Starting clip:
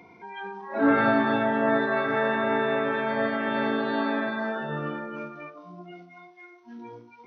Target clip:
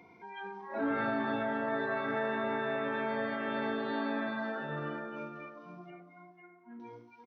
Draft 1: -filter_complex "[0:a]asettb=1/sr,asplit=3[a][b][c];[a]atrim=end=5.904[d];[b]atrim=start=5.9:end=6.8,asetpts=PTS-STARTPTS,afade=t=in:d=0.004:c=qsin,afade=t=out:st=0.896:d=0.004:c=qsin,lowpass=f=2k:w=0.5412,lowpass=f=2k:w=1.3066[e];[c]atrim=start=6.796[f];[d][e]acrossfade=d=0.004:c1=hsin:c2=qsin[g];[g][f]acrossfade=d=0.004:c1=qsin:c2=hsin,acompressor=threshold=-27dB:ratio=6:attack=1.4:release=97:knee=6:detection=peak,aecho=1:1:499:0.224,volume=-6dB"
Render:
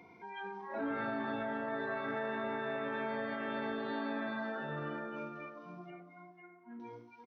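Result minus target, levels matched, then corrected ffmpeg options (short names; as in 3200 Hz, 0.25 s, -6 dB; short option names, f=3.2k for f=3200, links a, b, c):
compressor: peak gain reduction +5 dB
-filter_complex "[0:a]asettb=1/sr,asplit=3[a][b][c];[a]atrim=end=5.904[d];[b]atrim=start=5.9:end=6.8,asetpts=PTS-STARTPTS,afade=t=in:d=0.004:c=qsin,afade=t=out:st=0.896:d=0.004:c=qsin,lowpass=f=2k:w=0.5412,lowpass=f=2k:w=1.3066[e];[c]atrim=start=6.796[f];[d][e]acrossfade=d=0.004:c1=hsin:c2=qsin[g];[g][f]acrossfade=d=0.004:c1=qsin:c2=hsin,acompressor=threshold=-21dB:ratio=6:attack=1.4:release=97:knee=6:detection=peak,aecho=1:1:499:0.224,volume=-6dB"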